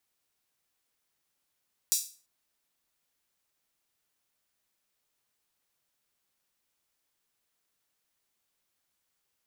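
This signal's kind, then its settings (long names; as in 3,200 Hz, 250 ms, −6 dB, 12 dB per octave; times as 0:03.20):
open synth hi-hat length 0.34 s, high-pass 5,700 Hz, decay 0.37 s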